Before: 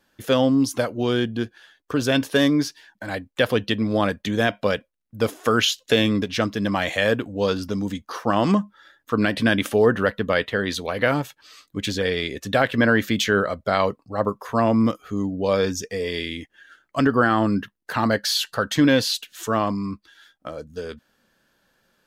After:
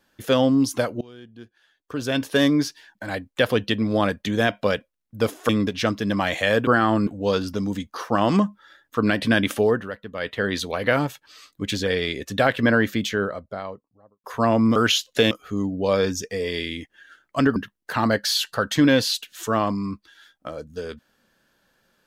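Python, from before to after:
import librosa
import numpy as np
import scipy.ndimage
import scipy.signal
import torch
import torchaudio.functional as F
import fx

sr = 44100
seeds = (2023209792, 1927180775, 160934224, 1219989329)

y = fx.studio_fade_out(x, sr, start_s=12.67, length_s=1.72)
y = fx.edit(y, sr, fx.fade_in_from(start_s=1.01, length_s=1.42, curve='qua', floor_db=-23.5),
    fx.move(start_s=5.49, length_s=0.55, to_s=14.91),
    fx.fade_down_up(start_s=9.73, length_s=0.87, db=-12.0, fade_s=0.3),
    fx.move(start_s=17.16, length_s=0.4, to_s=7.22), tone=tone)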